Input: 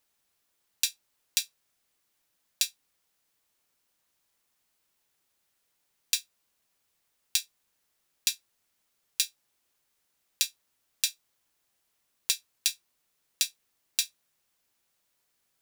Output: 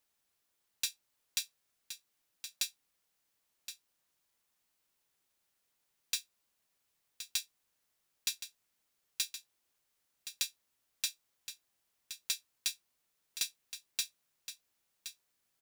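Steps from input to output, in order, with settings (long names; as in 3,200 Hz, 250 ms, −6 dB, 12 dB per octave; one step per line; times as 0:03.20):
soft clipping −17.5 dBFS, distortion −9 dB
on a send: single-tap delay 1,070 ms −11 dB
on the sum: level −4.5 dB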